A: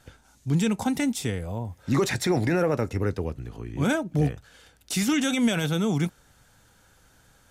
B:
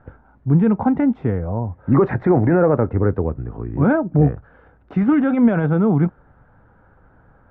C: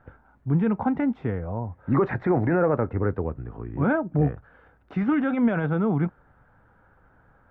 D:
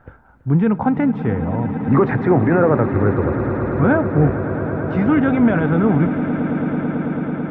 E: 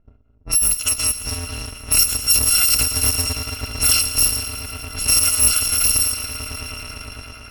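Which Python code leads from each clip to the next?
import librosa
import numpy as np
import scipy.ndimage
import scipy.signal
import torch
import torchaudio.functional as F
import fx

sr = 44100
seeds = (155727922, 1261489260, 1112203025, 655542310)

y1 = scipy.signal.sosfilt(scipy.signal.butter(4, 1400.0, 'lowpass', fs=sr, output='sos'), x)
y1 = F.gain(torch.from_numpy(y1), 8.5).numpy()
y2 = fx.tilt_shelf(y1, sr, db=-4.0, hz=1200.0)
y2 = F.gain(torch.from_numpy(y2), -3.5).numpy()
y3 = fx.echo_swell(y2, sr, ms=110, loudest=8, wet_db=-15)
y3 = F.gain(torch.from_numpy(y3), 6.5).numpy()
y4 = fx.bit_reversed(y3, sr, seeds[0], block=256)
y4 = fx.env_lowpass(y4, sr, base_hz=440.0, full_db=-12.0)
y4 = fx.echo_wet_highpass(y4, sr, ms=115, feedback_pct=76, hz=1900.0, wet_db=-14.5)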